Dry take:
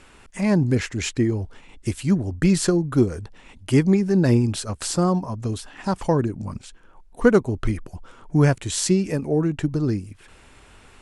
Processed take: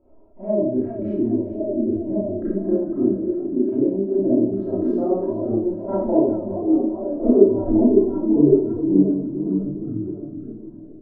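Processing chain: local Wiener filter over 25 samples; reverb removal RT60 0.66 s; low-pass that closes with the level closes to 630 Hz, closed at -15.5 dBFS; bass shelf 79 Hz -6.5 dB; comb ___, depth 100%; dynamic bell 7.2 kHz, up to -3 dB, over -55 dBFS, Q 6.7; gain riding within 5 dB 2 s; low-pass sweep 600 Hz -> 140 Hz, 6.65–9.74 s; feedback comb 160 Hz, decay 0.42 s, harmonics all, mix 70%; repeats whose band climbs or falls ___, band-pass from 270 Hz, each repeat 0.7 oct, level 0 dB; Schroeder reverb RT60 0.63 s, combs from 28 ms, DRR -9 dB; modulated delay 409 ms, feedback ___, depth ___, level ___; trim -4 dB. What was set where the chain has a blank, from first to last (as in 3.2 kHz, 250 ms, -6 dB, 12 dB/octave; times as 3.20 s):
3.1 ms, 554 ms, 44%, 128 cents, -13 dB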